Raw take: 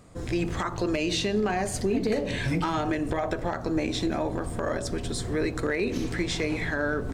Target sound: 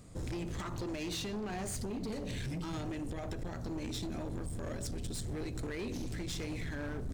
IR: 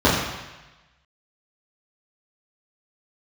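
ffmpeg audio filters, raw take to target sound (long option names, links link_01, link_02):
-af "asetnsamples=nb_out_samples=441:pad=0,asendcmd='1.74 equalizer g -15',equalizer=frequency=1000:width=0.38:gain=-8.5,acompressor=threshold=-33dB:ratio=6,asoftclip=type=hard:threshold=-36dB,volume=1dB"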